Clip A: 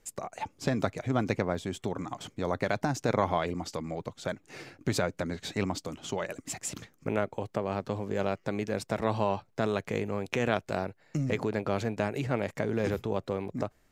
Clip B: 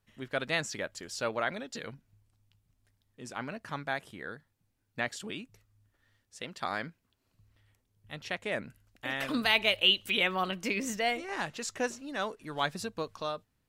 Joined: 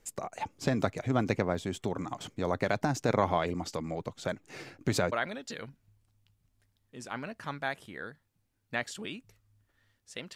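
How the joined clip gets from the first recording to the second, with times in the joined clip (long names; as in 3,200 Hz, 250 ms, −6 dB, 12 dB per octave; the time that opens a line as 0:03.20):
clip A
0:05.12: continue with clip B from 0:01.37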